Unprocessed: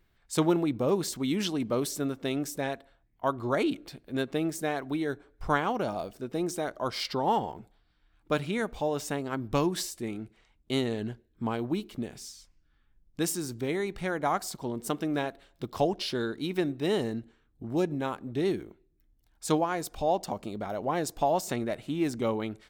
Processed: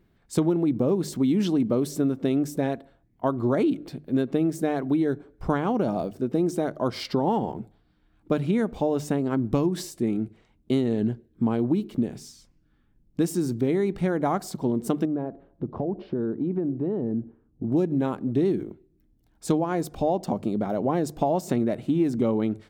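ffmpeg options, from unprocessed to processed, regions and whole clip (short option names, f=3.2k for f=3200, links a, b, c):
-filter_complex "[0:a]asettb=1/sr,asplit=3[a][b][c];[a]atrim=end=15.054[d];[b]atrim=start=15.05:end=17.72,asetpts=PTS-STARTPTS,afade=t=in:d=0.004:c=qsin,afade=t=out:st=2.666:d=0.004:c=qsin,lowpass=1k,acompressor=threshold=-34dB:ratio=4:attack=3.2:release=140:knee=1:detection=peak[e];[c]atrim=start=17.716[f];[d][e]acrossfade=d=0.004:c1=hsin:c2=qsin[g];[g][f]acrossfade=d=0.004:c1=qsin:c2=hsin,equalizer=f=210:w=0.35:g=14.5,bandreject=f=50:t=h:w=6,bandreject=f=100:t=h:w=6,bandreject=f=150:t=h:w=6,acompressor=threshold=-17dB:ratio=6,volume=-2dB"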